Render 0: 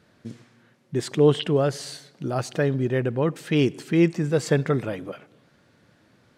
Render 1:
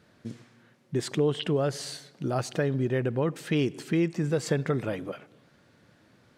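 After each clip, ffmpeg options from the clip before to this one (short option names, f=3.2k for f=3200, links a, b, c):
-af "acompressor=threshold=-22dB:ratio=3,volume=-1dB"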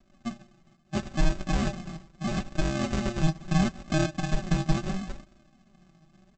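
-af "aresample=16000,acrusher=samples=34:mix=1:aa=0.000001,aresample=44100,flanger=delay=3.1:depth=3.1:regen=42:speed=0.75:shape=sinusoidal,aecho=1:1:5.2:0.65,volume=3dB"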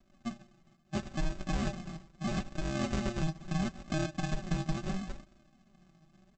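-af "alimiter=limit=-18.5dB:level=0:latency=1:release=163,volume=-4dB"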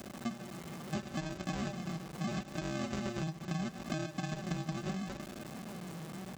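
-af "aeval=exprs='val(0)+0.5*0.00473*sgn(val(0))':c=same,highpass=100,acompressor=threshold=-43dB:ratio=4,volume=7.5dB"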